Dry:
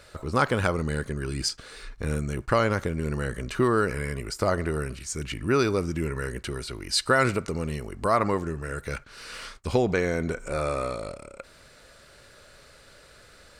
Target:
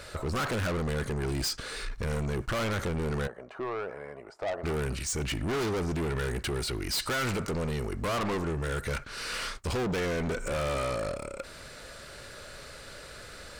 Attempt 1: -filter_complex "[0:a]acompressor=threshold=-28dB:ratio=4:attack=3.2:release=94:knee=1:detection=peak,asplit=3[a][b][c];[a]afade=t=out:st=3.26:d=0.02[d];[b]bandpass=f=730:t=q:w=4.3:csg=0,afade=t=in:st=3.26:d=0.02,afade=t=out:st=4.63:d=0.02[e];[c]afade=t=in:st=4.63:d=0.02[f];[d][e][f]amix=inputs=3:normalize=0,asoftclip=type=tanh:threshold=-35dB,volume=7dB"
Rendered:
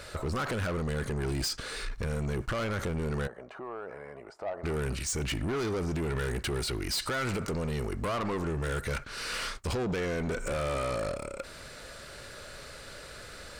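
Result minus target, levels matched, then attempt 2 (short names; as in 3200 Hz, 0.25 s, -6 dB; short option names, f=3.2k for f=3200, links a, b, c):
compressor: peak gain reduction +12 dB
-filter_complex "[0:a]asplit=3[a][b][c];[a]afade=t=out:st=3.26:d=0.02[d];[b]bandpass=f=730:t=q:w=4.3:csg=0,afade=t=in:st=3.26:d=0.02,afade=t=out:st=4.63:d=0.02[e];[c]afade=t=in:st=4.63:d=0.02[f];[d][e][f]amix=inputs=3:normalize=0,asoftclip=type=tanh:threshold=-35dB,volume=7dB"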